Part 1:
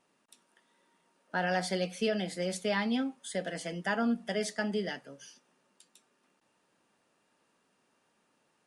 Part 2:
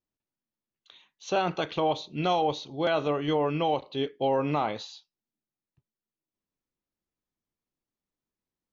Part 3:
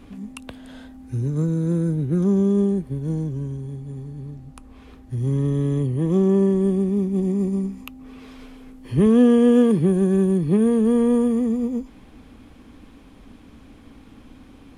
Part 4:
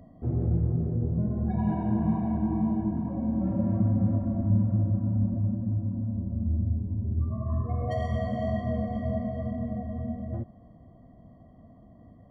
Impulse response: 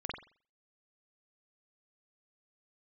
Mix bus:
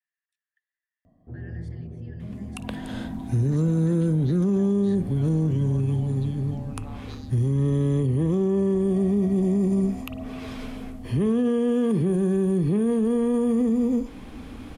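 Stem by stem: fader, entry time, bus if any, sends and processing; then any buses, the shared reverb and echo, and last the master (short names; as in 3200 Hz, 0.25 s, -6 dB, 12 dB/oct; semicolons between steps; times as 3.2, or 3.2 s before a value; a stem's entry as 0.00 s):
-10.0 dB, 0.00 s, no send, level quantiser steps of 13 dB; ladder high-pass 1700 Hz, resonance 85%
-7.0 dB, 2.30 s, no send, limiter -27.5 dBFS, peak gain reduction 13 dB; robotiser 143 Hz
-5.5 dB, 2.20 s, send -14 dB, AGC gain up to 11.5 dB
-9.5 dB, 1.05 s, no send, dry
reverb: on, pre-delay 44 ms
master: limiter -16 dBFS, peak gain reduction 11 dB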